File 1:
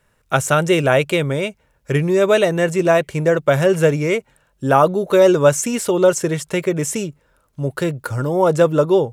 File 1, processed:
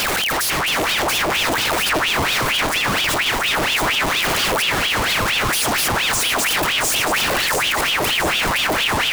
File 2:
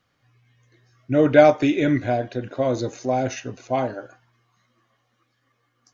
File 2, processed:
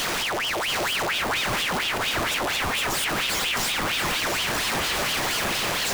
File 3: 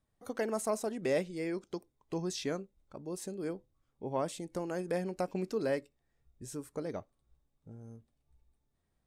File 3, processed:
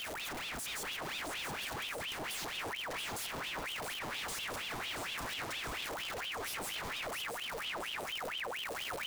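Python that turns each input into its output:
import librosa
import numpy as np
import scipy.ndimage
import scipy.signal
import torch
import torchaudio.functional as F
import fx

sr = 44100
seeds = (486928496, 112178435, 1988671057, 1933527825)

p1 = np.sign(x) * np.sqrt(np.mean(np.square(x)))
p2 = p1 + fx.echo_feedback(p1, sr, ms=677, feedback_pct=52, wet_db=-7.0, dry=0)
y = fx.ring_lfo(p2, sr, carrier_hz=1800.0, swing_pct=75, hz=4.3)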